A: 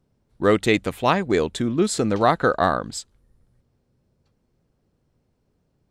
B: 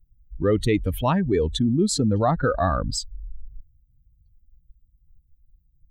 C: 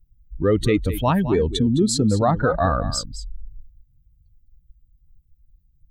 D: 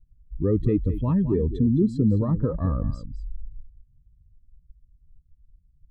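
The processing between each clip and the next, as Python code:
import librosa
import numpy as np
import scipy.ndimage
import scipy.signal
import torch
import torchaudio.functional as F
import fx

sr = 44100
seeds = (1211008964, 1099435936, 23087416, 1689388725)

y1 = fx.bin_expand(x, sr, power=2.0)
y1 = fx.tilt_eq(y1, sr, slope=-3.0)
y1 = fx.env_flatten(y1, sr, amount_pct=70)
y1 = y1 * 10.0 ** (-5.5 / 20.0)
y2 = y1 + 10.0 ** (-12.5 / 20.0) * np.pad(y1, (int(211 * sr / 1000.0), 0))[:len(y1)]
y2 = y2 * 10.0 ** (2.0 / 20.0)
y3 = scipy.signal.lfilter(np.full(60, 1.0 / 60), 1.0, y2)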